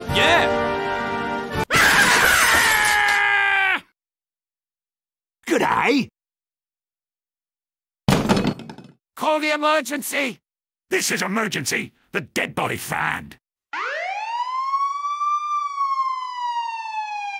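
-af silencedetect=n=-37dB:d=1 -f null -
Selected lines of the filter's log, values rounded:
silence_start: 3.81
silence_end: 5.47 | silence_duration: 1.66
silence_start: 6.06
silence_end: 8.08 | silence_duration: 2.02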